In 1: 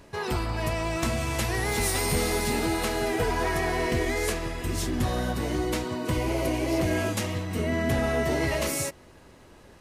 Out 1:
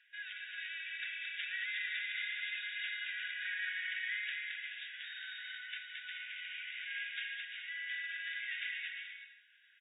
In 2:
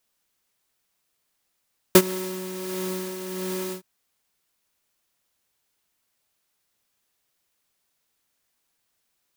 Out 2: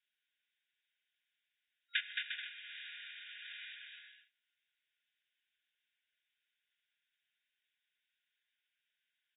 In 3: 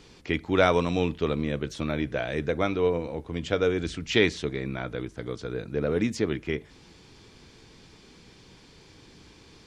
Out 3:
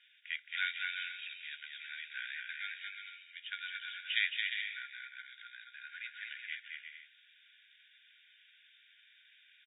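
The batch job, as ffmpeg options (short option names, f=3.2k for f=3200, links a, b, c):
-af "afftfilt=real='re*between(b*sr/4096,1400,3800)':imag='im*between(b*sr/4096,1400,3800)':win_size=4096:overlap=0.75,aecho=1:1:220|352|431.2|478.7|507.2:0.631|0.398|0.251|0.158|0.1,volume=-6.5dB" -ar 16000 -c:a libvorbis -b:a 48k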